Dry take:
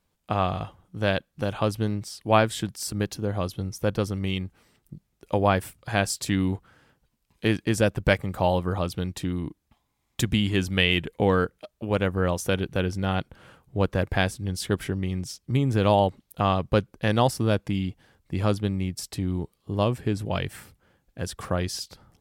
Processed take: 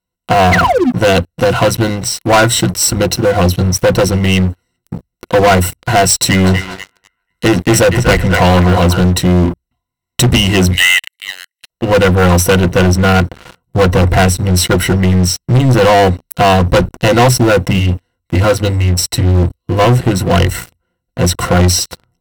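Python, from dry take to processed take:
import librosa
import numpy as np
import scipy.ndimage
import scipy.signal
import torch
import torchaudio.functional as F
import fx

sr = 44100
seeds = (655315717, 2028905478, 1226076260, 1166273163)

y = fx.spec_paint(x, sr, seeds[0], shape='fall', start_s=0.51, length_s=0.39, low_hz=210.0, high_hz=2400.0, level_db=-30.0)
y = fx.echo_banded(y, sr, ms=244, feedback_pct=44, hz=1700.0, wet_db=-7, at=(6.39, 9.0), fade=0.02)
y = fx.cheby1_highpass(y, sr, hz=1700.0, order=8, at=(10.71, 11.7))
y = fx.notch_comb(y, sr, f0_hz=190.0, at=(17.77, 19.84))
y = fx.ripple_eq(y, sr, per_octave=2.0, db=17)
y = fx.leveller(y, sr, passes=5)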